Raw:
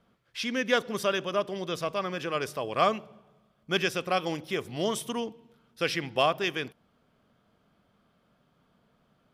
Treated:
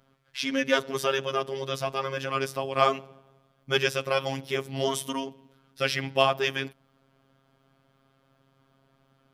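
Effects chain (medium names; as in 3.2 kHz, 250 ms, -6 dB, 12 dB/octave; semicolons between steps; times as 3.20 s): robot voice 135 Hz; trim +4.5 dB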